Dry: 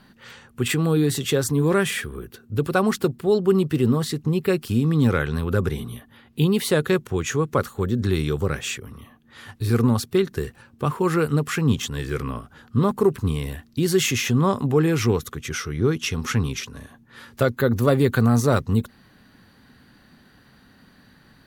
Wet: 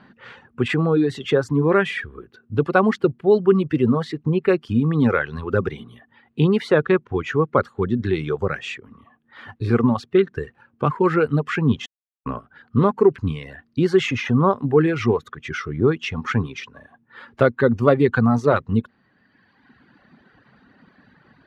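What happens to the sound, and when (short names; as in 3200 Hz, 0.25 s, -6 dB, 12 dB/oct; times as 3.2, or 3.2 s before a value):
6.8–7.65 median filter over 5 samples
11.86–12.26 mute
whole clip: HPF 160 Hz 6 dB/oct; reverb removal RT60 1.5 s; LPF 2300 Hz 12 dB/oct; gain +5 dB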